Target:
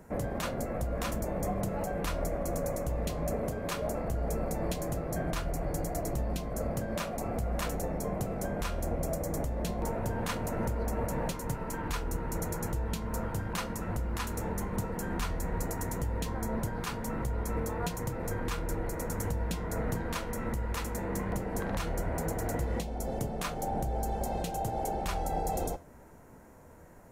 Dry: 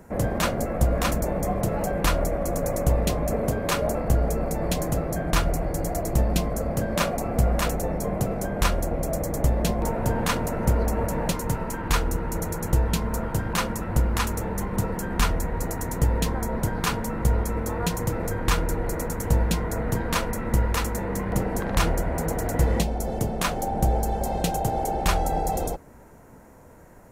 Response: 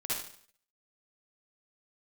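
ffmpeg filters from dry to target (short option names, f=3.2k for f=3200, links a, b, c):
-af "flanger=delay=6.5:depth=6.6:regen=83:speed=0.17:shape=triangular,alimiter=limit=-22dB:level=0:latency=1:release=303"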